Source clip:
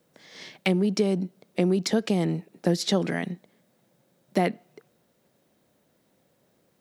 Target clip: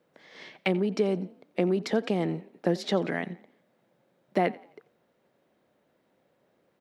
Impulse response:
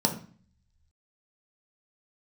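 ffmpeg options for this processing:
-filter_complex "[0:a]bass=frequency=250:gain=-7,treble=frequency=4000:gain=-14,asplit=2[link_01][link_02];[link_02]asplit=3[link_03][link_04][link_05];[link_03]adelay=87,afreqshift=36,volume=-21dB[link_06];[link_04]adelay=174,afreqshift=72,volume=-29dB[link_07];[link_05]adelay=261,afreqshift=108,volume=-36.9dB[link_08];[link_06][link_07][link_08]amix=inputs=3:normalize=0[link_09];[link_01][link_09]amix=inputs=2:normalize=0"

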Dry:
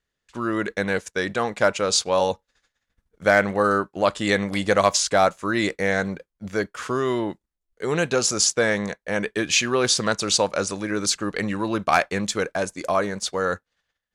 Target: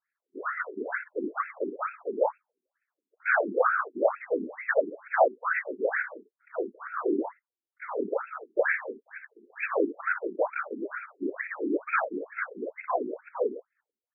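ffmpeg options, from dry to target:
ffmpeg -i in.wav -filter_complex "[0:a]asettb=1/sr,asplit=3[link_01][link_02][link_03];[link_01]atrim=end=8.974[link_04];[link_02]atrim=start=8.97:end=9.5,asetpts=PTS-STARTPTS,afade=type=in:duration=0.004:curve=qsin,afade=type=out:start_time=0.526:duration=0.004:curve=qsin,aderivative[link_05];[link_03]atrim=start=9.496[link_06];[link_04][link_05]acrossfade=duration=0.004:curve1=hsin:curve2=qsin[link_07];[link_07][link_06]acrossfade=duration=0.004:curve1=qsin:curve2=hsin,acrossover=split=230[link_08][link_09];[link_09]acontrast=37[link_10];[link_08][link_10]amix=inputs=2:normalize=0,afftfilt=real='hypot(re,im)*cos(2*PI*random(0))':imag='hypot(re,im)*sin(2*PI*random(1))':win_size=512:overlap=0.75,aecho=1:1:32|58:0.15|0.299,afftfilt=real='re*between(b*sr/1024,290*pow(1900/290,0.5+0.5*sin(2*PI*2.2*pts/sr))/1.41,290*pow(1900/290,0.5+0.5*sin(2*PI*2.2*pts/sr))*1.41)':imag='im*between(b*sr/1024,290*pow(1900/290,0.5+0.5*sin(2*PI*2.2*pts/sr))/1.41,290*pow(1900/290,0.5+0.5*sin(2*PI*2.2*pts/sr))*1.41)':win_size=1024:overlap=0.75" out.wav

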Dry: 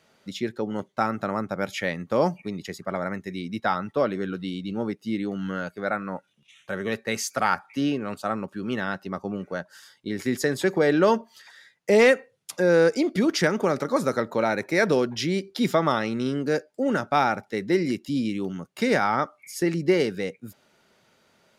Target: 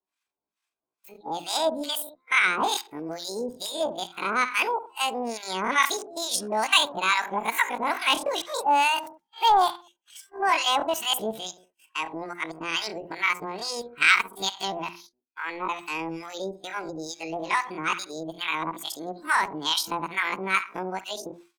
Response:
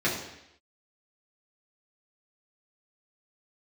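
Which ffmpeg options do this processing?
-filter_complex "[0:a]areverse,asplit=2[link_01][link_02];[link_02]adelay=65,lowpass=frequency=1300:poles=1,volume=-13dB,asplit=2[link_03][link_04];[link_04]adelay=65,lowpass=frequency=1300:poles=1,volume=0.35,asplit=2[link_05][link_06];[link_06]adelay=65,lowpass=frequency=1300:poles=1,volume=0.35[link_07];[link_01][link_03][link_05][link_07]amix=inputs=4:normalize=0,acrossover=split=620[link_08][link_09];[link_08]aeval=exprs='val(0)*(1-1/2+1/2*cos(2*PI*2.3*n/s))':channel_layout=same[link_10];[link_09]aeval=exprs='val(0)*(1-1/2-1/2*cos(2*PI*2.3*n/s))':channel_layout=same[link_11];[link_10][link_11]amix=inputs=2:normalize=0,bandreject=frequency=50:width_type=h:width=6,bandreject=frequency=100:width_type=h:width=6,bandreject=frequency=150:width_type=h:width=6,bandreject=frequency=200:width_type=h:width=6,acrossover=split=120|480|6700[link_12][link_13][link_14][link_15];[link_13]acompressor=threshold=-46dB:ratio=4[link_16];[link_12][link_16][link_14][link_15]amix=inputs=4:normalize=0,agate=range=-33dB:threshold=-50dB:ratio=3:detection=peak,asetrate=76340,aresample=44100,atempo=0.577676,lowshelf=frequency=63:gain=6.5,volume=7dB"

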